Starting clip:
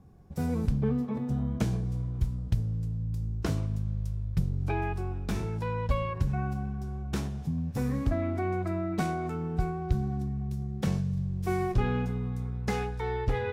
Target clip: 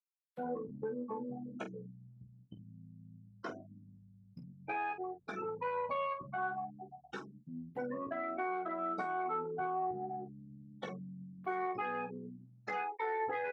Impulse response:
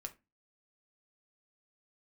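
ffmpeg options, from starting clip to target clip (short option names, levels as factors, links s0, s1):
-filter_complex "[0:a]aemphasis=mode=production:type=riaa,bandreject=f=60:t=h:w=6,bandreject=f=120:t=h:w=6,bandreject=f=180:t=h:w=6,bandreject=f=240:t=h:w=6,afftfilt=real='re*gte(hypot(re,im),0.0316)':imag='im*gte(hypot(re,im),0.0316)':win_size=1024:overlap=0.75,adynamicequalizer=threshold=0.00398:dfrequency=1700:dqfactor=0.75:tfrequency=1700:tqfactor=0.75:attack=5:release=100:ratio=0.375:range=2.5:mode=boostabove:tftype=bell,acompressor=threshold=0.0158:ratio=16,tremolo=f=87:d=0.462,asplit=2[s0][s1];[s1]highpass=f=720:p=1,volume=4.47,asoftclip=type=tanh:threshold=0.0501[s2];[s0][s2]amix=inputs=2:normalize=0,lowpass=f=1300:p=1,volume=0.501,highpass=190,lowpass=3100,aecho=1:1:16|47:0.596|0.335,volume=1.19"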